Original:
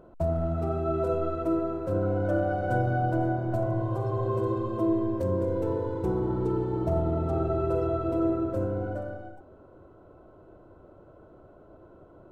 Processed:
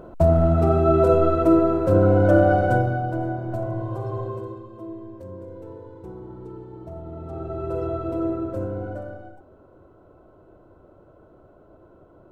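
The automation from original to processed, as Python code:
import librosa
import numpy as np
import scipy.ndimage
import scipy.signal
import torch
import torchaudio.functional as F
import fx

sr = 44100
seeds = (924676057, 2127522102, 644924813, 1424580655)

y = fx.gain(x, sr, db=fx.line((2.57, 10.5), (3.03, 0.0), (4.18, 0.0), (4.67, -11.0), (6.98, -11.0), (7.83, 0.5)))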